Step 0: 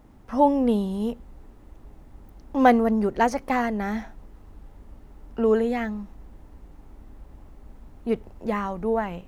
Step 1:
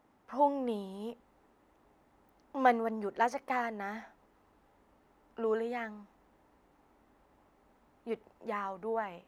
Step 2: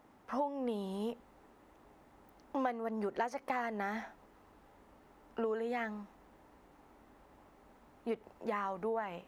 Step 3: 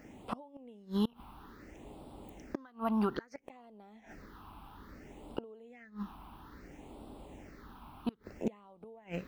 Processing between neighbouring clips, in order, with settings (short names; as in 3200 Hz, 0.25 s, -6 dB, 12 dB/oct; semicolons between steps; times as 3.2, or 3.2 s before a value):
HPF 1400 Hz 6 dB/oct; high shelf 2100 Hz -12 dB
compressor 8:1, threshold -37 dBFS, peak gain reduction 17 dB; gain +5 dB
phaser stages 6, 0.6 Hz, lowest notch 490–1800 Hz; flipped gate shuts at -34 dBFS, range -28 dB; gain +12.5 dB